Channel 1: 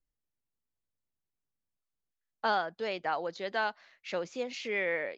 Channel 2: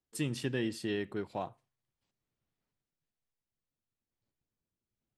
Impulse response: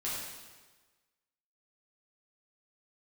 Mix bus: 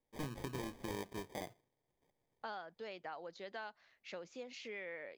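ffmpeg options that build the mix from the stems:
-filter_complex "[0:a]volume=-9dB[link_01];[1:a]lowpass=frequency=2300:width_type=q:width=9.4,acrusher=samples=32:mix=1:aa=0.000001,volume=1dB[link_02];[link_01][link_02]amix=inputs=2:normalize=0,acompressor=threshold=-45dB:ratio=2.5"

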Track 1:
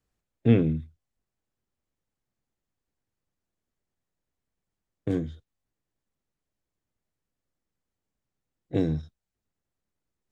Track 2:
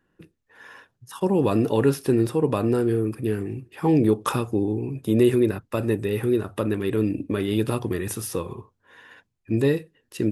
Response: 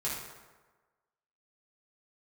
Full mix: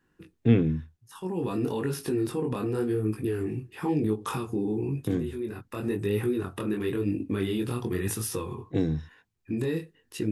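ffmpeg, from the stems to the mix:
-filter_complex "[0:a]volume=-0.5dB,asplit=2[link_01][link_02];[1:a]alimiter=limit=-18dB:level=0:latency=1:release=109,flanger=delay=19:depth=5.4:speed=0.97,volume=2.5dB[link_03];[link_02]apad=whole_len=455012[link_04];[link_03][link_04]sidechaincompress=threshold=-32dB:ratio=8:attack=6.9:release=733[link_05];[link_01][link_05]amix=inputs=2:normalize=0,equalizer=frequency=590:width=4.8:gain=-9"

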